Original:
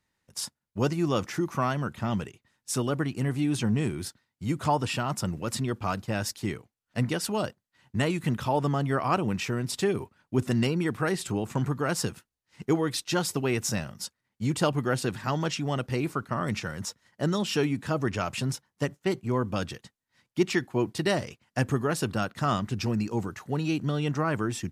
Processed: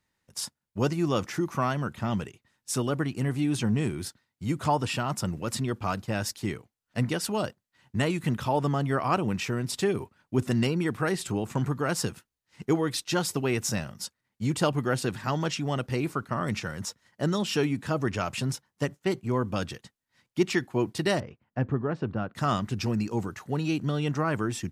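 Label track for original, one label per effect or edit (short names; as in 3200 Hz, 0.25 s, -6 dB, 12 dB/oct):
21.200000	22.350000	tape spacing loss at 10 kHz 44 dB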